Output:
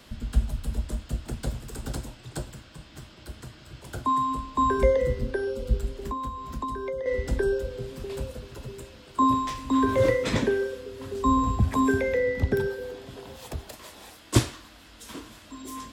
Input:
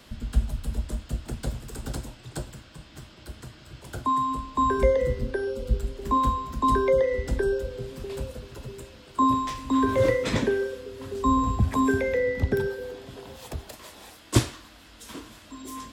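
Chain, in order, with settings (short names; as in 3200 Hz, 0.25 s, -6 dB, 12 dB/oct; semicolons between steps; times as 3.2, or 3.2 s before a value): 5.97–7.06 compressor 12:1, threshold -29 dBFS, peak gain reduction 12.5 dB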